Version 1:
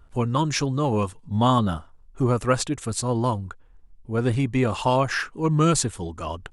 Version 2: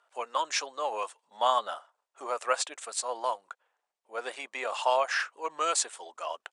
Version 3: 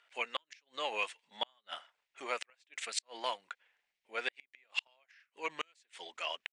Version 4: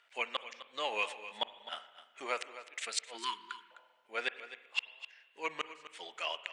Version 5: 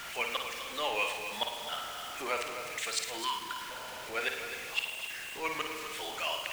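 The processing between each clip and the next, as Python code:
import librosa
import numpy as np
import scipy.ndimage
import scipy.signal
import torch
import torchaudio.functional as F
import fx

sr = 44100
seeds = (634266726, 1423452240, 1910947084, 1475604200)

y1 = scipy.signal.sosfilt(scipy.signal.ellip(3, 1.0, 60, [600.0, 8900.0], 'bandpass', fs=sr, output='sos'), x)
y1 = F.gain(torch.from_numpy(y1), -2.5).numpy()
y2 = fx.curve_eq(y1, sr, hz=(170.0, 600.0, 1200.0, 2100.0, 5300.0, 9000.0), db=(0, -11, -11, 8, -2, -10))
y2 = fx.gate_flip(y2, sr, shuts_db=-24.0, range_db=-40)
y2 = F.gain(torch.from_numpy(y2), 4.0).numpy()
y3 = y2 + 10.0 ** (-14.0 / 20.0) * np.pad(y2, (int(257 * sr / 1000.0), 0))[:len(y2)]
y3 = fx.rev_spring(y3, sr, rt60_s=1.5, pass_ms=(38, 47), chirp_ms=70, drr_db=14.0)
y3 = fx.spec_erase(y3, sr, start_s=3.18, length_s=0.53, low_hz=450.0, high_hz=920.0)
y3 = F.gain(torch.from_numpy(y3), 1.0).numpy()
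y4 = y3 + 0.5 * 10.0 ** (-37.5 / 20.0) * np.sign(y3)
y4 = fx.room_flutter(y4, sr, wall_m=9.2, rt60_s=0.44)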